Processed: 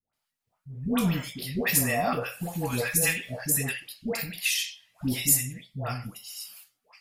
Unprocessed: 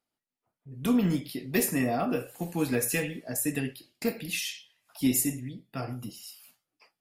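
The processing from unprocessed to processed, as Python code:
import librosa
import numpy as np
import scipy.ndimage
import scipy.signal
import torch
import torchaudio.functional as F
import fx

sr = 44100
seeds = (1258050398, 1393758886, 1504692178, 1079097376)

y = fx.peak_eq(x, sr, hz=320.0, db=-14.0, octaves=1.1)
y = fx.dispersion(y, sr, late='highs', ms=134.0, hz=780.0)
y = y * librosa.db_to_amplitude(6.0)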